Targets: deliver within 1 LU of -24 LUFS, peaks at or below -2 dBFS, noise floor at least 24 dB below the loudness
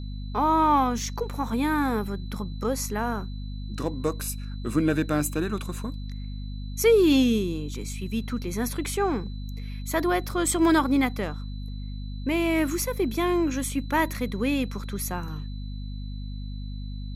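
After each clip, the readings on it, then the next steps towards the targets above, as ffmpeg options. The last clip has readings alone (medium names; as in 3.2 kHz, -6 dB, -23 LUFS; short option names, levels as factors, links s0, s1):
hum 50 Hz; highest harmonic 250 Hz; hum level -31 dBFS; steady tone 4 kHz; tone level -51 dBFS; loudness -26.0 LUFS; peak level -9.5 dBFS; loudness target -24.0 LUFS
-> -af "bandreject=f=50:t=h:w=4,bandreject=f=100:t=h:w=4,bandreject=f=150:t=h:w=4,bandreject=f=200:t=h:w=4,bandreject=f=250:t=h:w=4"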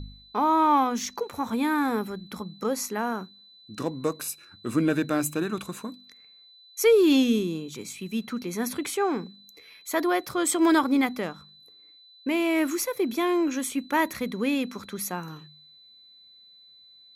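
hum not found; steady tone 4 kHz; tone level -51 dBFS
-> -af "bandreject=f=4000:w=30"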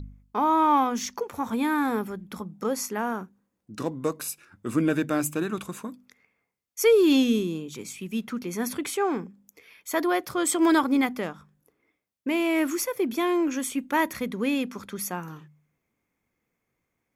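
steady tone not found; loudness -26.0 LUFS; peak level -10.0 dBFS; loudness target -24.0 LUFS
-> -af "volume=1.26"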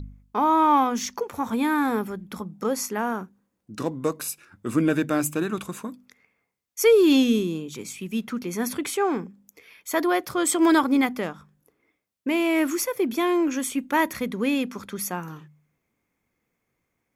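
loudness -24.0 LUFS; peak level -8.0 dBFS; noise floor -78 dBFS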